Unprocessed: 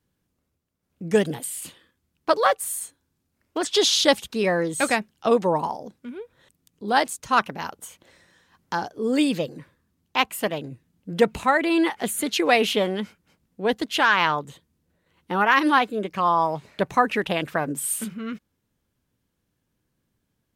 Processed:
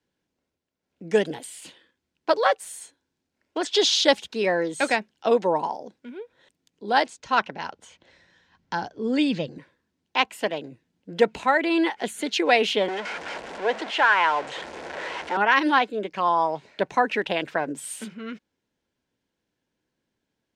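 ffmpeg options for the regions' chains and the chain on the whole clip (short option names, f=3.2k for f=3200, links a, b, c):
-filter_complex "[0:a]asettb=1/sr,asplit=3[a][b][c];[a]atrim=end=7.064[d];[b]atrim=start=7.06:end=9.58,asetpts=PTS-STARTPTS,afade=t=in:d=0.004:c=qsin,afade=t=out:st=2.516:d=0.004:c=qsin,asubboost=boost=7.5:cutoff=180,lowpass=6.4k[e];[c]atrim=start=9.576[f];[d][e]acrossfade=d=0.004:c1=hsin:c2=qsin[g];[g][f]acrossfade=d=0.004:c1=qsin:c2=hsin,asettb=1/sr,asplit=3[h][i][j];[h]atrim=end=12.884[k];[i]atrim=start=12.88:end=15.37,asetpts=PTS-STARTPTS,afade=t=in:d=0.004:c=qsin,afade=t=out:st=2.486:d=0.004:c=qsin,aeval=exprs='val(0)+0.5*0.0891*sgn(val(0))':c=same,lowpass=f=9.7k:w=0.5412,lowpass=f=9.7k:w=1.3066,acrossover=split=430 2500:gain=0.141 1 0.251[l][m][n];[l][m][n]amix=inputs=3:normalize=0[o];[j]atrim=start=15.366[p];[k][o]acrossfade=d=0.004:c1=hsin:c2=qsin[q];[q][p]acrossfade=d=0.004:c1=qsin:c2=hsin,acrossover=split=240 7300:gain=0.251 1 0.1[r][s][t];[r][s][t]amix=inputs=3:normalize=0,bandreject=f=1.2k:w=6.4"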